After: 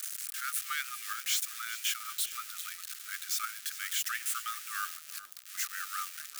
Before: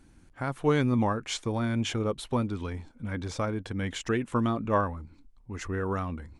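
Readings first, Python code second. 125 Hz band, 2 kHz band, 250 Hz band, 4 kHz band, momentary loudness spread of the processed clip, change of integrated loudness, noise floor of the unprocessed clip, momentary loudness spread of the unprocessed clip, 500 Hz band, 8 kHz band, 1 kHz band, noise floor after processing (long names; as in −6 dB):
below −40 dB, +0.5 dB, below −40 dB, +3.0 dB, 8 LU, −4.5 dB, −57 dBFS, 11 LU, below −40 dB, +10.0 dB, −7.5 dB, −50 dBFS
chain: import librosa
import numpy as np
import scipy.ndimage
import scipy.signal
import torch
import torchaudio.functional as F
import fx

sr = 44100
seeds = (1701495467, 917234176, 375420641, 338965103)

y = x + 0.5 * 10.0 ** (-25.0 / 20.0) * np.diff(np.sign(x), prepend=np.sign(x[:1]))
y = scipy.signal.sosfilt(scipy.signal.cheby1(10, 1.0, 1200.0, 'highpass', fs=sr, output='sos'), y)
y = fx.echo_crushed(y, sr, ms=404, feedback_pct=35, bits=8, wet_db=-14.0)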